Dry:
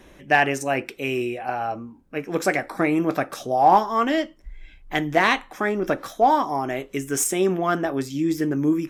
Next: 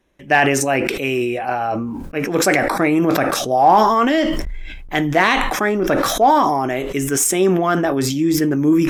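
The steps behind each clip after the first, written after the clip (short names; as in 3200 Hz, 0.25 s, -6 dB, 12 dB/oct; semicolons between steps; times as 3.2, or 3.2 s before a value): gate with hold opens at -39 dBFS; in parallel at 0 dB: limiter -12.5 dBFS, peak gain reduction 8 dB; on the sum: sustainer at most 30 dB/s; gain -1 dB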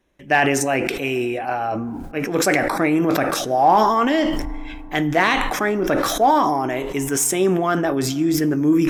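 FDN reverb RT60 3 s, high-frequency decay 0.3×, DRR 18.5 dB; gain -2.5 dB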